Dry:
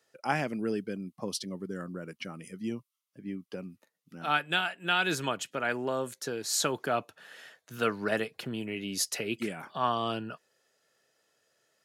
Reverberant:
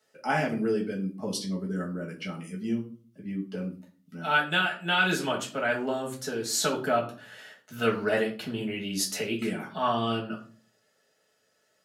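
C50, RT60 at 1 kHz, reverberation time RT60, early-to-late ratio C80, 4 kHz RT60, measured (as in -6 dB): 10.5 dB, 0.35 s, 0.40 s, 15.5 dB, 0.30 s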